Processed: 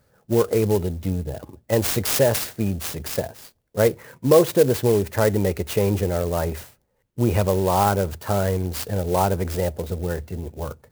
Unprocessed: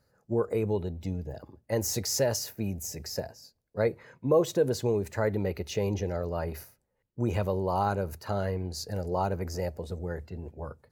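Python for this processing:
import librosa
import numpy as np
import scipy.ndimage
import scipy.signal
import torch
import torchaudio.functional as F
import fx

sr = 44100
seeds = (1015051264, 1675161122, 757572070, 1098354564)

y = fx.clock_jitter(x, sr, seeds[0], jitter_ms=0.049)
y = y * 10.0 ** (8.5 / 20.0)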